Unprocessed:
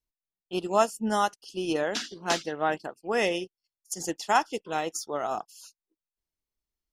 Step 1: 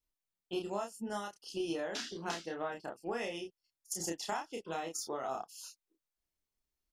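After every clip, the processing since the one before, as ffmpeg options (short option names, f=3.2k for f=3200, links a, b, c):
-filter_complex "[0:a]acompressor=threshold=-34dB:ratio=12,asplit=2[a][b];[b]adelay=30,volume=-3dB[c];[a][c]amix=inputs=2:normalize=0,volume=-1.5dB"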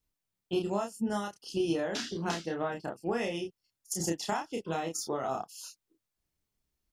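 -af "equalizer=f=120:w=0.55:g=9.5,volume=3.5dB"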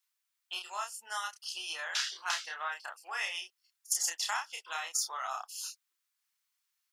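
-af "highpass=f=1.1k:w=0.5412,highpass=f=1.1k:w=1.3066,volume=5dB"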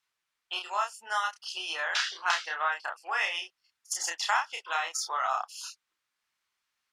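-af "aemphasis=mode=reproduction:type=75fm,volume=8.5dB"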